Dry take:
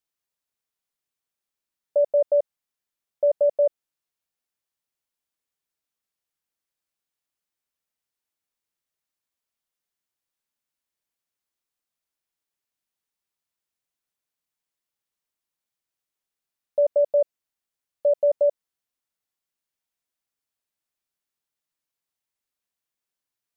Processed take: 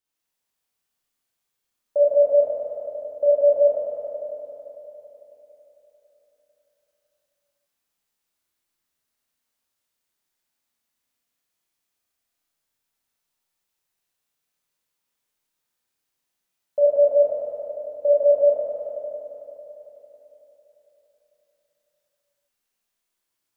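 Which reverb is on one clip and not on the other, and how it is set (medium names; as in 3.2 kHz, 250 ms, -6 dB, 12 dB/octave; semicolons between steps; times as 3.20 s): Schroeder reverb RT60 3.9 s, combs from 25 ms, DRR -9 dB; trim -2 dB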